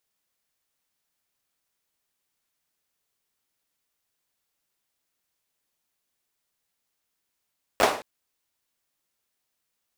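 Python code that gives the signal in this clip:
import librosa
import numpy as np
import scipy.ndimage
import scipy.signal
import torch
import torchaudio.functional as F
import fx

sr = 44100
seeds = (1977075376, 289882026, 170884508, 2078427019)

y = fx.drum_clap(sr, seeds[0], length_s=0.22, bursts=4, spacing_ms=10, hz=630.0, decay_s=0.42)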